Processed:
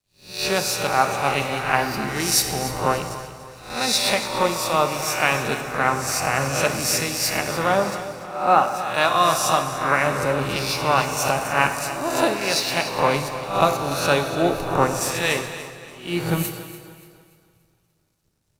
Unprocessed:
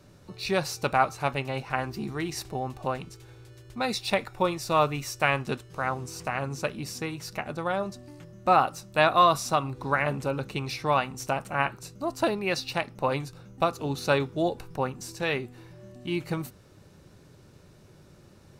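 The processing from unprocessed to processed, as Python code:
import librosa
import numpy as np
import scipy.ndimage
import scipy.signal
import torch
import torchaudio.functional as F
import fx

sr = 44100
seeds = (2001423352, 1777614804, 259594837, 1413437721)

p1 = fx.spec_swells(x, sr, rise_s=0.75)
p2 = fx.peak_eq(p1, sr, hz=12000.0, db=9.0, octaves=2.0)
p3 = fx.rider(p2, sr, range_db=4, speed_s=0.5)
p4 = np.sign(p3) * np.maximum(np.abs(p3) - 10.0 ** (-46.5 / 20.0), 0.0)
p5 = p4 + fx.echo_feedback(p4, sr, ms=290, feedback_pct=54, wet_db=-10.0, dry=0)
p6 = fx.rev_plate(p5, sr, seeds[0], rt60_s=3.6, hf_ratio=0.8, predelay_ms=0, drr_db=5.5)
p7 = fx.band_widen(p6, sr, depth_pct=70)
y = F.gain(torch.from_numpy(p7), 2.5).numpy()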